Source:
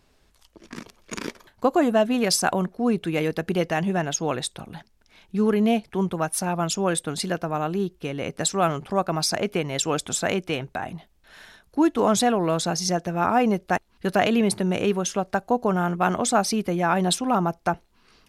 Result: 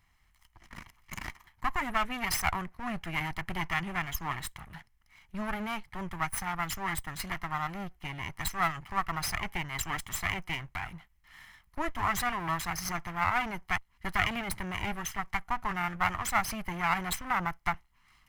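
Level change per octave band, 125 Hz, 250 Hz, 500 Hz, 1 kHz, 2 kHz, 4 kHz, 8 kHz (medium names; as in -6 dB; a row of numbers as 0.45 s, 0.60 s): -10.0 dB, -16.0 dB, -19.5 dB, -6.5 dB, -1.0 dB, -9.0 dB, -10.5 dB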